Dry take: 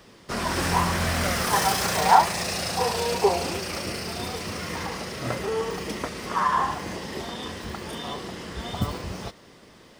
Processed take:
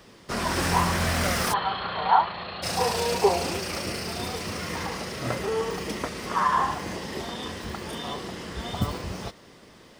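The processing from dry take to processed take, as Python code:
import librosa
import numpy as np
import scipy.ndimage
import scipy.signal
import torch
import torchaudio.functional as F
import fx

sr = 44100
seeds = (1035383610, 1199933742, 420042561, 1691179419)

y = fx.cheby_ripple(x, sr, hz=4400.0, ripple_db=9, at=(1.52, 2.62), fade=0.02)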